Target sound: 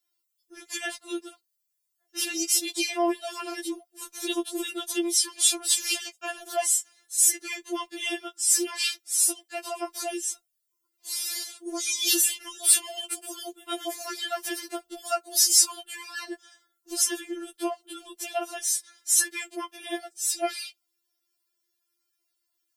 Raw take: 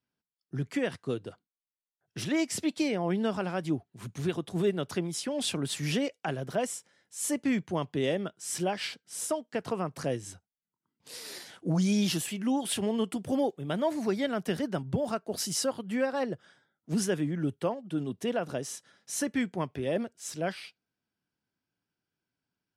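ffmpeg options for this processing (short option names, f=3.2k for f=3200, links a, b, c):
-af "bandreject=f=2k:w=29,crystalizer=i=6:c=0,afftfilt=real='re*4*eq(mod(b,16),0)':imag='im*4*eq(mod(b,16),0)':win_size=2048:overlap=0.75"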